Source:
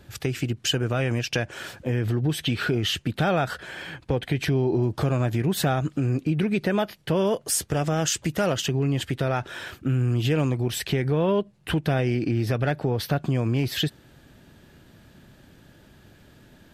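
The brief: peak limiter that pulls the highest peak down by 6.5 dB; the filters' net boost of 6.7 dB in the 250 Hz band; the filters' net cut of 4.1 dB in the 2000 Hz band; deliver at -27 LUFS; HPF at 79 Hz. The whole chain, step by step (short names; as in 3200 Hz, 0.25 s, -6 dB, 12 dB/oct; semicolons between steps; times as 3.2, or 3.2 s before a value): HPF 79 Hz; bell 250 Hz +9 dB; bell 2000 Hz -6 dB; gain -3.5 dB; limiter -16.5 dBFS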